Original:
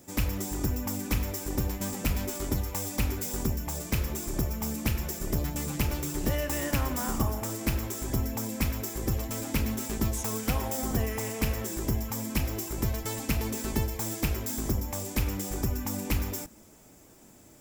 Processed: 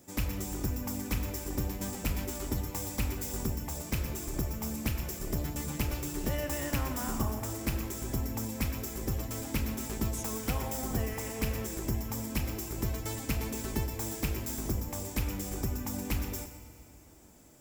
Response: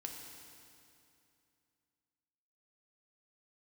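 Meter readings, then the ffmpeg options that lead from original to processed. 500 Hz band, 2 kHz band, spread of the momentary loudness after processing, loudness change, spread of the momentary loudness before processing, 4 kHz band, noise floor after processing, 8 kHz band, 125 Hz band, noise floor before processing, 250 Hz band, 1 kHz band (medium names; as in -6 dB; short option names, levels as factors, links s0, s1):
-3.5 dB, -3.5 dB, 2 LU, -3.5 dB, 2 LU, -3.5 dB, -53 dBFS, -3.5 dB, -3.5 dB, -54 dBFS, -3.5 dB, -3.5 dB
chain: -filter_complex "[0:a]asplit=2[s0][s1];[1:a]atrim=start_sample=2205,adelay=122[s2];[s1][s2]afir=irnorm=-1:irlink=0,volume=0.398[s3];[s0][s3]amix=inputs=2:normalize=0,volume=0.631"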